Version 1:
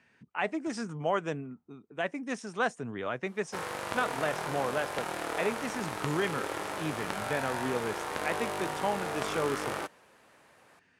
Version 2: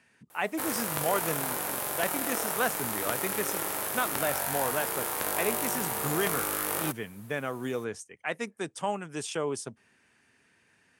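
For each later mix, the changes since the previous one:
background: entry -2.95 s; master: remove distance through air 96 m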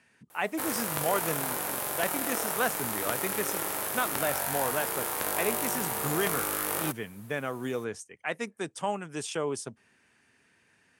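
no change

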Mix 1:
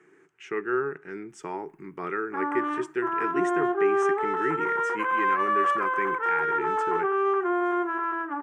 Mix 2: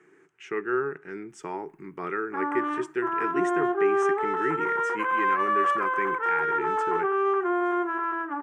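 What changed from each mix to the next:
no change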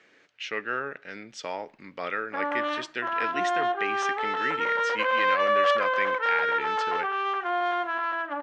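master: remove FFT filter 110 Hz 0 dB, 160 Hz +10 dB, 240 Hz -3 dB, 380 Hz +15 dB, 550 Hz -14 dB, 840 Hz +1 dB, 1.3 kHz +1 dB, 2.4 kHz -8 dB, 4.2 kHz -21 dB, 9.3 kHz +10 dB

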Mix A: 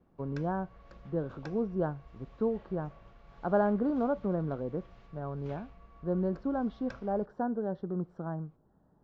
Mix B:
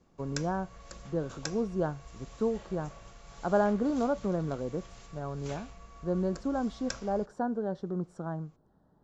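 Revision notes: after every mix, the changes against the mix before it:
background +4.0 dB; master: remove distance through air 330 m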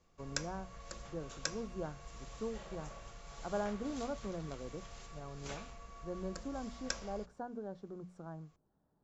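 speech -11.0 dB; master: add hum notches 60/120/180/240 Hz

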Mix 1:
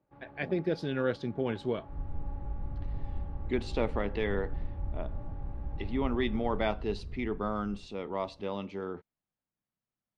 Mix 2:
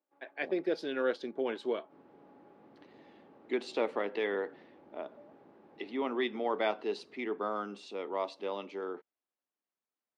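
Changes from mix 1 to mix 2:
first sound -11.5 dB; master: add high-pass 290 Hz 24 dB/octave

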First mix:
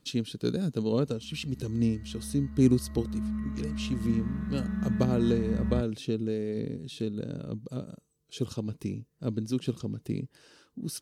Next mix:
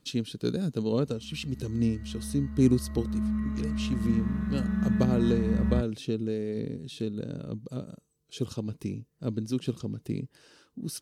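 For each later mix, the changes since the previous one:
background +3.5 dB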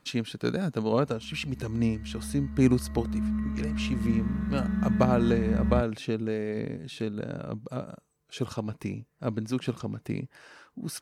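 speech: add high-order bell 1.2 kHz +10.5 dB 2.3 oct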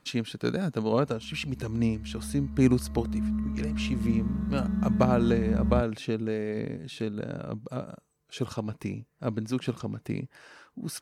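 background: add peaking EQ 2 kHz -11 dB 1.1 oct

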